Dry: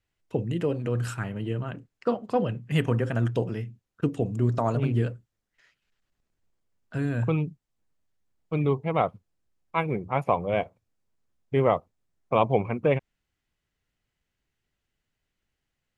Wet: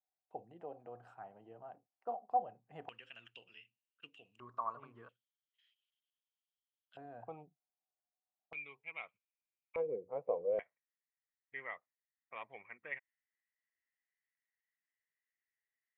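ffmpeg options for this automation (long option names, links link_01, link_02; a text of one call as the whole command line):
ffmpeg -i in.wav -af "asetnsamples=nb_out_samples=441:pad=0,asendcmd='2.89 bandpass f 2800;4.4 bandpass f 1100;5.09 bandpass f 3200;6.97 bandpass f 740;8.53 bandpass f 2400;9.76 bandpass f 490;10.59 bandpass f 1900',bandpass=frequency=750:width_type=q:width=11:csg=0" out.wav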